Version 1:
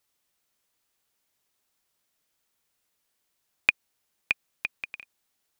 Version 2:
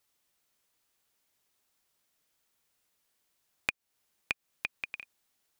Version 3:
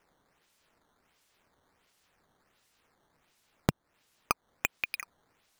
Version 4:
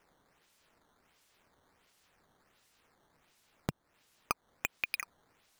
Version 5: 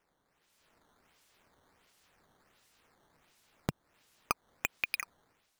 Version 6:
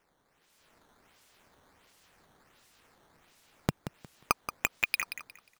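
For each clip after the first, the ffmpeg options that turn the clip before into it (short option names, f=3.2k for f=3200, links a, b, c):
-af "acompressor=threshold=-31dB:ratio=3"
-af "acrusher=samples=10:mix=1:aa=0.000001:lfo=1:lforange=16:lforate=1.4,volume=5dB"
-af "alimiter=limit=-16.5dB:level=0:latency=1:release=51,volume=1dB"
-af "dynaudnorm=f=150:g=7:m=9dB,volume=-7.5dB"
-af "aecho=1:1:179|358|537:0.299|0.0716|0.0172,volume=4.5dB"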